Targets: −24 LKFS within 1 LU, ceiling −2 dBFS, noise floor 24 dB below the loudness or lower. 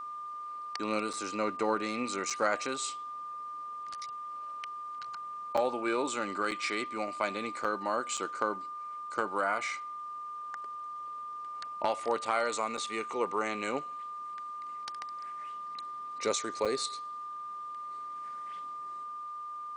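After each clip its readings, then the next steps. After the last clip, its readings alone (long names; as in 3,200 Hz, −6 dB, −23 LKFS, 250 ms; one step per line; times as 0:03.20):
number of dropouts 8; longest dropout 5.5 ms; interfering tone 1,200 Hz; level of the tone −38 dBFS; integrated loudness −35.0 LKFS; sample peak −15.0 dBFS; target loudness −24.0 LKFS
→ repair the gap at 0:01.13/0:02.30/0:05.57/0:06.51/0:07.64/0:08.17/0:12.77/0:16.65, 5.5 ms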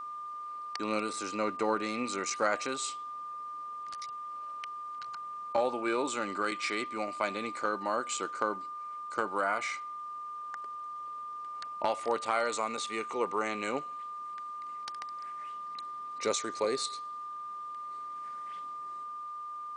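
number of dropouts 0; interfering tone 1,200 Hz; level of the tone −38 dBFS
→ notch filter 1,200 Hz, Q 30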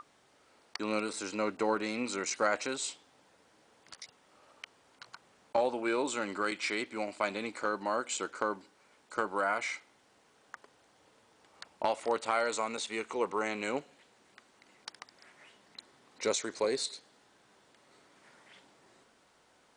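interfering tone none found; integrated loudness −33.5 LKFS; sample peak −15.5 dBFS; target loudness −24.0 LKFS
→ level +9.5 dB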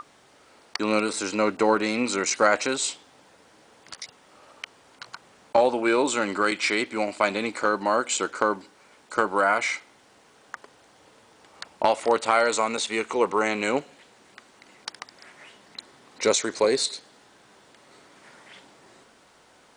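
integrated loudness −24.0 LKFS; sample peak −6.0 dBFS; background noise floor −57 dBFS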